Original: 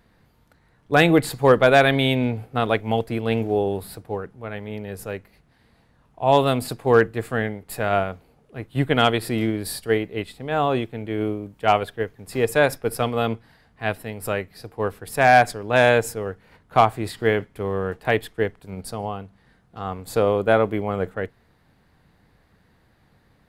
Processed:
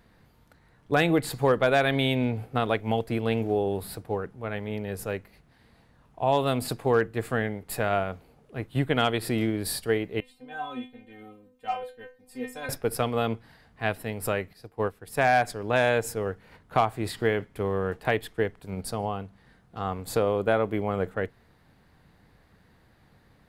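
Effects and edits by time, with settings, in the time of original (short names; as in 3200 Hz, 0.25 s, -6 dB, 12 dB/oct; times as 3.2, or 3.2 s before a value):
10.2–12.69 metallic resonator 250 Hz, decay 0.3 s, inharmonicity 0.002
14.53–15.19 upward expander, over -44 dBFS
whole clip: compressor 2:1, threshold -24 dBFS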